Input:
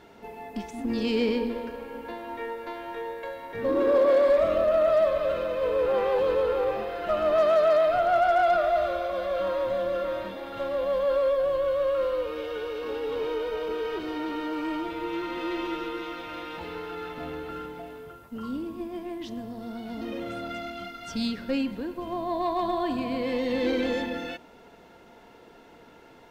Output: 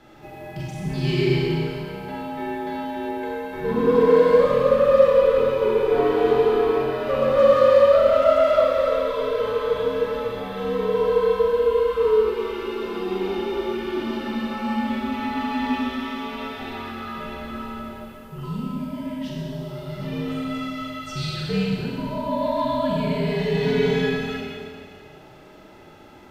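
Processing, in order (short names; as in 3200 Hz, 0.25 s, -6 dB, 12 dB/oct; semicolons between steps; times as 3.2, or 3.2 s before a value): Schroeder reverb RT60 2 s, combs from 29 ms, DRR -4 dB; frequency shift -82 Hz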